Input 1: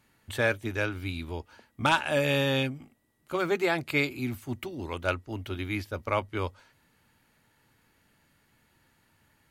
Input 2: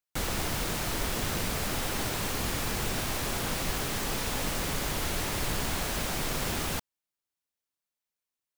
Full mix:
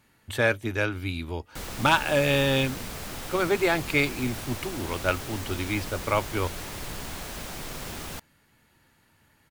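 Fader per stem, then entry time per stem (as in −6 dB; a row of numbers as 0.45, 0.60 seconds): +3.0, −5.5 decibels; 0.00, 1.40 seconds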